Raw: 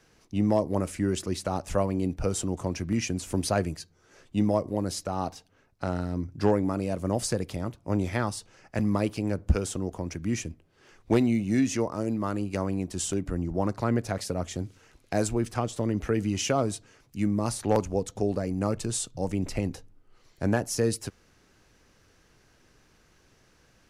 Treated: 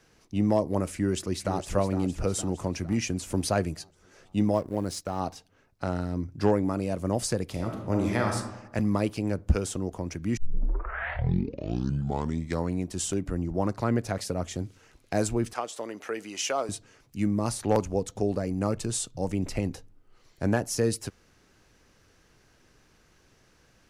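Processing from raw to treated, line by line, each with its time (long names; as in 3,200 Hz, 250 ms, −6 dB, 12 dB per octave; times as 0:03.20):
0:00.93–0:01.75: delay throw 460 ms, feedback 55%, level −10 dB
0:04.54–0:05.20: mu-law and A-law mismatch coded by A
0:07.50–0:08.36: thrown reverb, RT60 0.96 s, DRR 1.5 dB
0:10.37: tape start 2.52 s
0:15.53–0:16.69: high-pass filter 540 Hz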